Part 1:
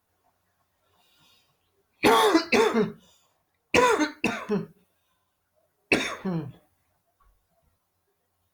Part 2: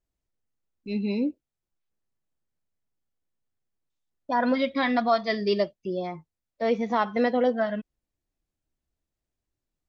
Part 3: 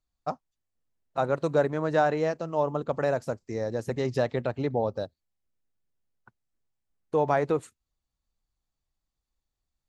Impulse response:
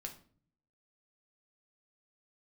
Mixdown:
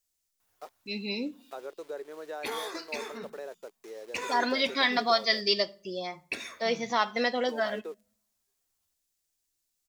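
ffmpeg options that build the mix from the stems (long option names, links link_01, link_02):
-filter_complex "[0:a]adelay=400,volume=-5.5dB,afade=type=out:start_time=1.49:duration=0.23:silence=0.316228,asplit=2[link_01][link_02];[link_02]volume=-5.5dB[link_03];[1:a]bass=frequency=250:gain=-5,treble=frequency=4000:gain=10,volume=-3dB,asplit=2[link_04][link_05];[link_05]volume=-6.5dB[link_06];[2:a]aeval=exprs='val(0)*gte(abs(val(0)),0.0133)':channel_layout=same,highpass=frequency=400:width_type=q:width=4.2,adelay=350,volume=-13dB[link_07];[link_01][link_07]amix=inputs=2:normalize=0,acompressor=threshold=-40dB:ratio=1.5,volume=0dB[link_08];[3:a]atrim=start_sample=2205[link_09];[link_03][link_06]amix=inputs=2:normalize=0[link_10];[link_10][link_09]afir=irnorm=-1:irlink=0[link_11];[link_04][link_08][link_11]amix=inputs=3:normalize=0,tiltshelf=frequency=1200:gain=-6"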